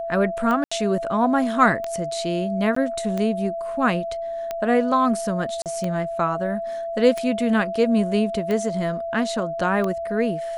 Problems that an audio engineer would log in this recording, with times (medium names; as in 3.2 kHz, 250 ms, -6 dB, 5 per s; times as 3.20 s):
tick 45 rpm -14 dBFS
whine 670 Hz -26 dBFS
0.64–0.71 s: dropout 75 ms
2.75–2.76 s: dropout 14 ms
5.62–5.66 s: dropout 38 ms